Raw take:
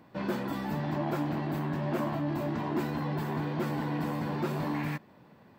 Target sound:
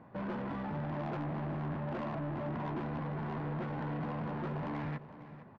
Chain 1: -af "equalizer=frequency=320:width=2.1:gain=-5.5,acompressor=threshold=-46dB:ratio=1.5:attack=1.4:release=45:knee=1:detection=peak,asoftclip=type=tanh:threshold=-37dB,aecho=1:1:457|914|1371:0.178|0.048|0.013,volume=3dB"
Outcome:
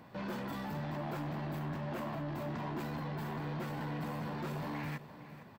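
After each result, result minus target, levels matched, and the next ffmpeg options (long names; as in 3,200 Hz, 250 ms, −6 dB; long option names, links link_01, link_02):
downward compressor: peak gain reduction +3.5 dB; 2,000 Hz band +2.5 dB
-af "equalizer=frequency=320:width=2.1:gain=-5.5,acompressor=threshold=-35.5dB:ratio=1.5:attack=1.4:release=45:knee=1:detection=peak,asoftclip=type=tanh:threshold=-37dB,aecho=1:1:457|914|1371:0.178|0.048|0.013,volume=3dB"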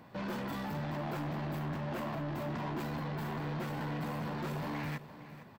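2,000 Hz band +3.0 dB
-af "lowpass=1500,equalizer=frequency=320:width=2.1:gain=-5.5,acompressor=threshold=-35.5dB:ratio=1.5:attack=1.4:release=45:knee=1:detection=peak,asoftclip=type=tanh:threshold=-37dB,aecho=1:1:457|914|1371:0.178|0.048|0.013,volume=3dB"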